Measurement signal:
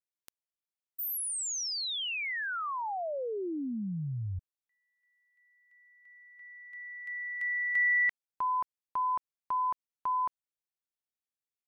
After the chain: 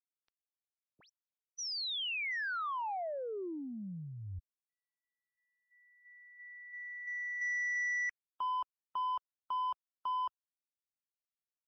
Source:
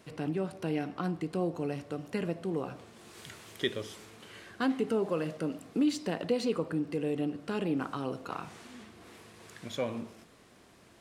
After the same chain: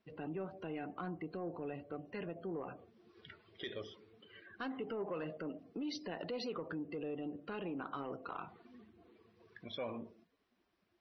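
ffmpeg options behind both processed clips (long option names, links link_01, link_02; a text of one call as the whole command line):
ffmpeg -i in.wav -af "afftdn=noise_reduction=20:noise_floor=-45,equalizer=frequency=510:width=1.8:gain=-2.5,alimiter=level_in=4dB:limit=-24dB:level=0:latency=1:release=48,volume=-4dB,equalizer=frequency=125:width_type=o:width=1:gain=-9,equalizer=frequency=250:width_type=o:width=1:gain=-5,equalizer=frequency=8000:width_type=o:width=1:gain=-7,asoftclip=type=tanh:threshold=-30dB" -ar 24000 -c:a libmp3lame -b:a 24k out.mp3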